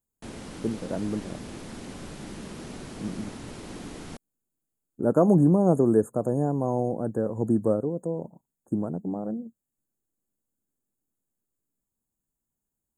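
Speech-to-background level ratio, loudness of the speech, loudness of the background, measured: 15.0 dB, -25.5 LUFS, -40.5 LUFS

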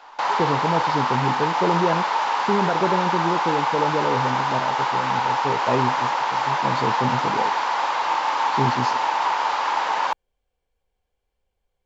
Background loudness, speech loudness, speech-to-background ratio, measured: -22.0 LUFS, -27.0 LUFS, -5.0 dB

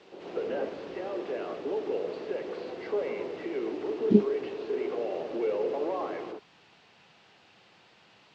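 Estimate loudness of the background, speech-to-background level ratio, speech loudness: -33.5 LUFS, 7.5 dB, -26.0 LUFS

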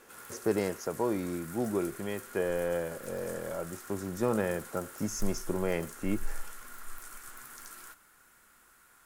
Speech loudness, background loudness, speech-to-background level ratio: -34.0 LUFS, -46.0 LUFS, 12.0 dB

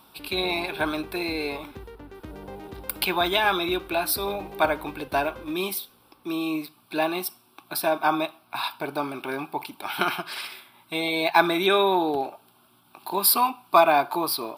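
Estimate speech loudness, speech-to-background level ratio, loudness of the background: -25.0 LUFS, 17.5 dB, -42.5 LUFS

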